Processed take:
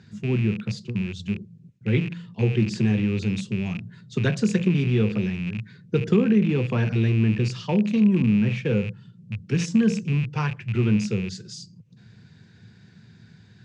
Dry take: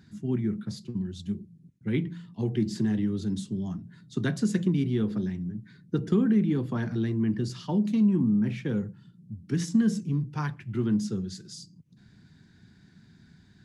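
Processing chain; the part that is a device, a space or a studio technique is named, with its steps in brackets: car door speaker with a rattle (rattle on loud lows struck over -34 dBFS, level -34 dBFS; cabinet simulation 87–7700 Hz, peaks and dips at 110 Hz +8 dB, 290 Hz -8 dB, 490 Hz +9 dB, 2.6 kHz +6 dB); trim +4.5 dB

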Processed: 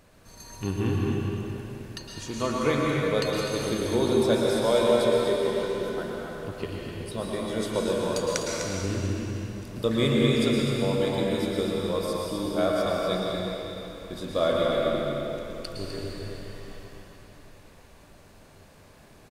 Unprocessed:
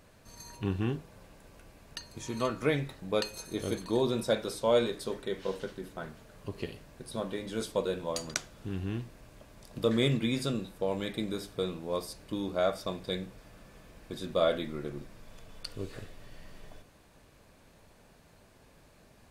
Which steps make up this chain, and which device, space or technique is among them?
cave (delay 252 ms -8.5 dB; reverberation RT60 3.4 s, pre-delay 105 ms, DRR -3 dB); trim +1.5 dB

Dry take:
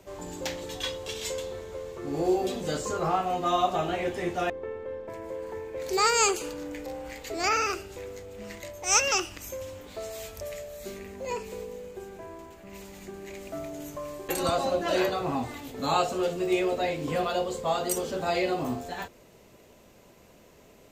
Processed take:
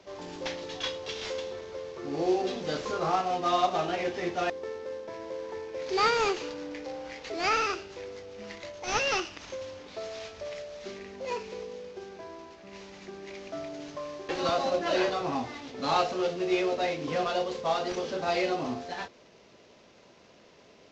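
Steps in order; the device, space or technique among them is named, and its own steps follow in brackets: early wireless headset (high-pass 210 Hz 6 dB/octave; CVSD coder 32 kbps)

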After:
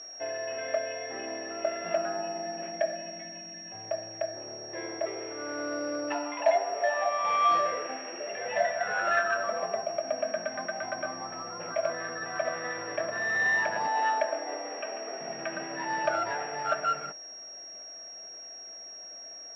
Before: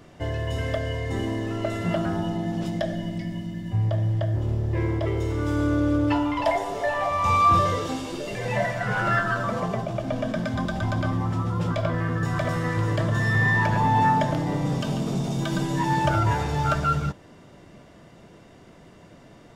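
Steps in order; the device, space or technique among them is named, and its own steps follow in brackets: high-pass 94 Hz; 13.87–15.21 s: high-pass 300 Hz 24 dB/octave; toy sound module (decimation joined by straight lines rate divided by 8×; class-D stage that switches slowly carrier 5.6 kHz; cabinet simulation 620–4600 Hz, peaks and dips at 670 Hz +7 dB, 980 Hz -9 dB, 1.7 kHz +4 dB, 2.6 kHz +6 dB, 4.1 kHz -6 dB); trim -1.5 dB

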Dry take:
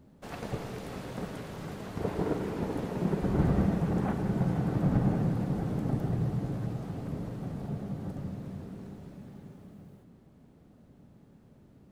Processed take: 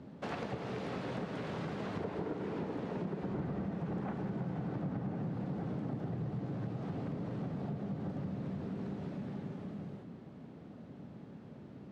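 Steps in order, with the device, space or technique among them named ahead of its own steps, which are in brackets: AM radio (band-pass 120–4100 Hz; compression 6:1, threshold -43 dBFS, peak gain reduction 19 dB; saturation -35.5 dBFS, distortion -23 dB); trim +8 dB

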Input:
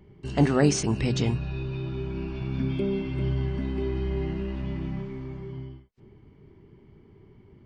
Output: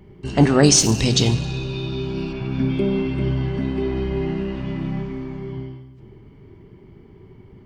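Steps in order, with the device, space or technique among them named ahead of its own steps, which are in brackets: saturated reverb return (on a send at -6 dB: reverberation RT60 1.2 s, pre-delay 8 ms + saturation -27.5 dBFS, distortion -8 dB); 0.63–2.33 s: on the sum: resonant high shelf 2.8 kHz +7.5 dB, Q 1.5; trim +6.5 dB

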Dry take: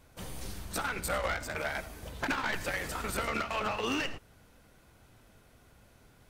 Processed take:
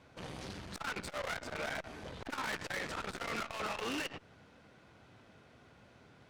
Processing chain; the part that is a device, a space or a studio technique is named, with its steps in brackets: valve radio (band-pass 110–4400 Hz; valve stage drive 40 dB, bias 0.75; transformer saturation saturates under 340 Hz); trim +6.5 dB

